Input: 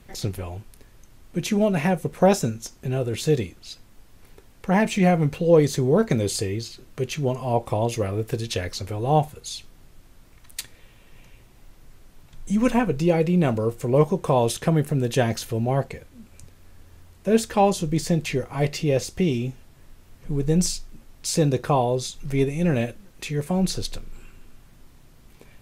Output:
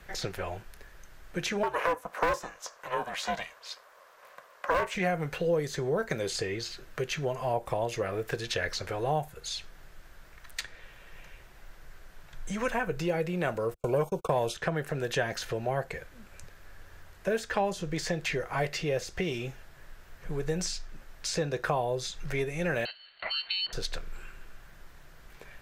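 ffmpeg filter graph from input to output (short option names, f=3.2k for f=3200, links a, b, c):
-filter_complex "[0:a]asettb=1/sr,asplit=3[a][b][c];[a]atrim=end=1.634[d];[b]atrim=start=1.63:end=4.95,asetpts=PTS-STARTPTS,afade=t=in:d=0.004:c=qsin,afade=t=out:st=3.316:d=0.004:c=qsin,highpass=f=800:t=q:w=6.1,aeval=exprs='val(0)*sin(2*PI*250*n/s)':c=same,volume=14.5dB,asoftclip=hard,volume=-14.5dB[e];[c]atrim=start=4.946[f];[d][e]acrossfade=d=0.004:c1=hsin:c2=qsin[g];[g][f]acrossfade=d=0.004:c1=qsin:c2=hsin,asettb=1/sr,asplit=3[h][i][j];[h]atrim=end=13.744[k];[i]atrim=start=13.74:end=14.54,asetpts=PTS-STARTPTS,afade=t=in:d=0.004:c=qsin,afade=t=out:st=0.796:d=0.004:c=qsin,agate=range=-45dB:threshold=-31dB:ratio=16:release=100:detection=peak,asuperstop=centerf=1800:order=20:qfactor=2.6,acontrast=33[l];[j]atrim=start=14.536[m];[k][l]acrossfade=d=0.004:c1=hsin:c2=qsin[n];[n][m]acrossfade=d=0.004:c1=qsin:c2=hsin,asettb=1/sr,asplit=3[o][p][q];[o]atrim=end=22.854[r];[p]atrim=start=22.85:end=23.73,asetpts=PTS-STARTPTS,afade=t=in:d=0.004:c=qsin,afade=t=out:st=0.876:d=0.004:c=qsin,highpass=92,lowpass=f=3.3k:t=q:w=0.5098,lowpass=f=3.3k:t=q:w=0.6013,lowpass=f=3.3k:t=q:w=0.9,lowpass=f=3.3k:t=q:w=2.563,afreqshift=-3900,aeval=exprs='val(0)*sin(2*PI*680*n/s)':c=same[s];[q]atrim=start=23.726[t];[r][s]acrossfade=d=0.004:c1=hsin:c2=qsin[u];[u][t]acrossfade=d=0.004:c1=qsin:c2=hsin,acrossover=split=360|7600[v][w][x];[v]acompressor=threshold=-30dB:ratio=4[y];[w]acompressor=threshold=-31dB:ratio=4[z];[x]acompressor=threshold=-51dB:ratio=4[aa];[y][z][aa]amix=inputs=3:normalize=0,equalizer=f=100:t=o:w=0.67:g=-9,equalizer=f=250:t=o:w=0.67:g=-10,equalizer=f=630:t=o:w=0.67:g=3,equalizer=f=1.6k:t=o:w=0.67:g=10,equalizer=f=10k:t=o:w=0.67:g=-5"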